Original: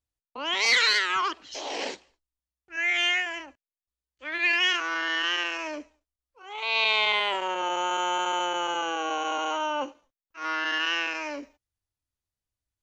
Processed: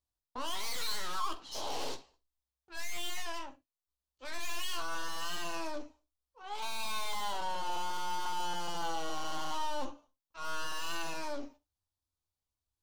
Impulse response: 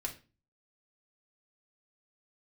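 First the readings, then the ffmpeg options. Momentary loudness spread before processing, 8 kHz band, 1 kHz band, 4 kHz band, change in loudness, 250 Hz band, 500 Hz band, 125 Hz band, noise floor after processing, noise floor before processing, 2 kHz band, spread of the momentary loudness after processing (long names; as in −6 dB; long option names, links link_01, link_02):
15 LU, −4.0 dB, −8.0 dB, −13.0 dB, −12.5 dB, −8.5 dB, −10.0 dB, can't be measured, below −85 dBFS, below −85 dBFS, −17.5 dB, 9 LU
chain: -filter_complex "[0:a]aeval=exprs='(tanh(79.4*val(0)+0.7)-tanh(0.7))/79.4':channel_layout=same,equalizer=frequency=1000:width_type=o:width=1:gain=6,equalizer=frequency=2000:width_type=o:width=1:gain=-10,equalizer=frequency=4000:width_type=o:width=1:gain=4,asplit=2[link_01][link_02];[1:a]atrim=start_sample=2205,afade=type=out:start_time=0.14:duration=0.01,atrim=end_sample=6615,adelay=12[link_03];[link_02][link_03]afir=irnorm=-1:irlink=0,volume=-6dB[link_04];[link_01][link_04]amix=inputs=2:normalize=0"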